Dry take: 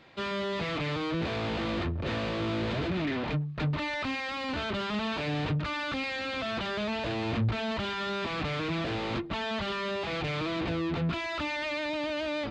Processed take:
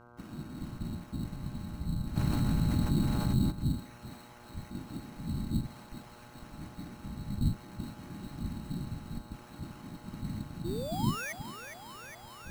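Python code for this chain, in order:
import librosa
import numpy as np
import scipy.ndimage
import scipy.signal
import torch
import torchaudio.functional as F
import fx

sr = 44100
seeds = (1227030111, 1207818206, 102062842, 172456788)

p1 = scipy.signal.sosfilt(scipy.signal.cheby1(5, 1.0, [190.0, 5300.0], 'bandstop', fs=sr, output='sos'), x)
p2 = fx.whisperise(p1, sr, seeds[0])
p3 = fx.spec_paint(p2, sr, seeds[1], shape='rise', start_s=10.64, length_s=0.69, low_hz=320.0, high_hz=2000.0, level_db=-38.0)
p4 = fx.sample_hold(p3, sr, seeds[2], rate_hz=4100.0, jitter_pct=0)
p5 = fx.dmg_buzz(p4, sr, base_hz=120.0, harmonics=13, level_db=-56.0, tilt_db=-2, odd_only=False)
p6 = p5 + fx.echo_thinned(p5, sr, ms=412, feedback_pct=81, hz=500.0, wet_db=-8.0, dry=0)
y = fx.env_flatten(p6, sr, amount_pct=70, at=(2.15, 3.5), fade=0.02)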